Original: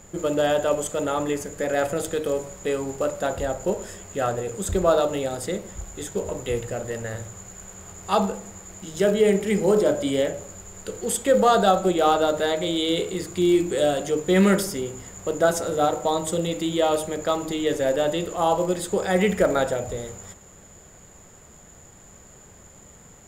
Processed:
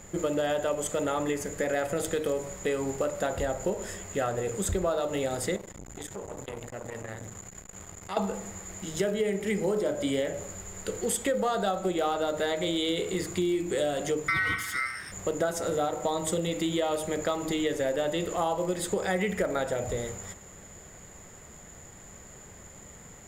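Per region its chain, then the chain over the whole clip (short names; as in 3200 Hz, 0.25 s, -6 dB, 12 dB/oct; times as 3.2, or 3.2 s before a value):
5.56–8.17 compressor, threshold -31 dBFS + core saturation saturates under 740 Hz
14.28–15.12 ring modulator 1700 Hz + bell 100 Hz +14 dB 2 oct
whole clip: bell 2000 Hz +4.5 dB 0.36 oct; compressor, threshold -25 dBFS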